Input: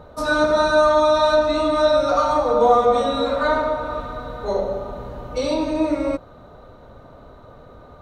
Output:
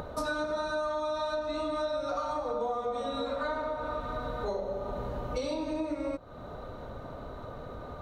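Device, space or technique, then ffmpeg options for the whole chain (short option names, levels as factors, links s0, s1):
upward and downward compression: -af "acompressor=mode=upward:threshold=0.0158:ratio=2.5,acompressor=threshold=0.0282:ratio=6"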